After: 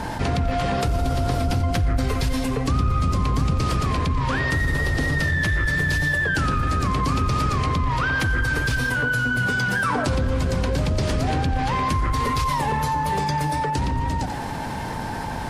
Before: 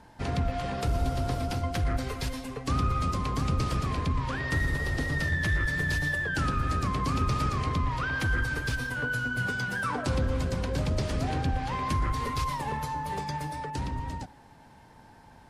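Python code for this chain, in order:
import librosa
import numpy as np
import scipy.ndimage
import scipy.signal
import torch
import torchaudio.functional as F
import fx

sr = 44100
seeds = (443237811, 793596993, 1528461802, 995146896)

y = fx.low_shelf(x, sr, hz=220.0, db=6.0, at=(1.44, 3.51))
y = y + 10.0 ** (-17.0 / 20.0) * np.pad(y, (int(89 * sr / 1000.0), 0))[:len(y)]
y = fx.env_flatten(y, sr, amount_pct=70)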